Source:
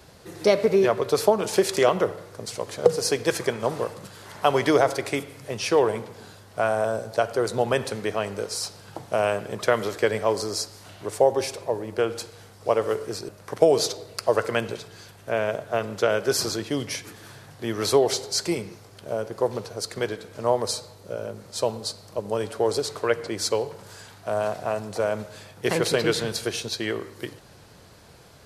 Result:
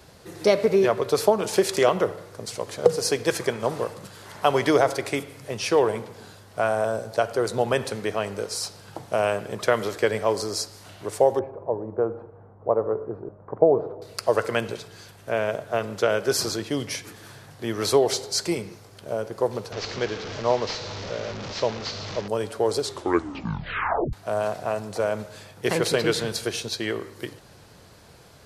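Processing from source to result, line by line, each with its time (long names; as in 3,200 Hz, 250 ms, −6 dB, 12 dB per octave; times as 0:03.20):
0:11.39–0:14.02: low-pass filter 1,100 Hz 24 dB per octave
0:19.72–0:22.28: linear delta modulator 32 kbit/s, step −28 dBFS
0:22.81: tape stop 1.32 s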